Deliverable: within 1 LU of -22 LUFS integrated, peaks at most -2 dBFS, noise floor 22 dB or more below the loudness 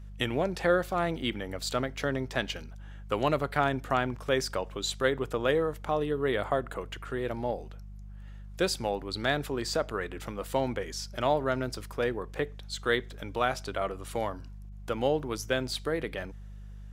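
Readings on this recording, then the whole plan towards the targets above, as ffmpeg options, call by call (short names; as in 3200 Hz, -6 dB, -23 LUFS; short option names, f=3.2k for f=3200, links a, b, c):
hum 50 Hz; harmonics up to 200 Hz; hum level -41 dBFS; loudness -31.0 LUFS; peak -10.0 dBFS; loudness target -22.0 LUFS
-> -af "bandreject=f=50:t=h:w=4,bandreject=f=100:t=h:w=4,bandreject=f=150:t=h:w=4,bandreject=f=200:t=h:w=4"
-af "volume=9dB,alimiter=limit=-2dB:level=0:latency=1"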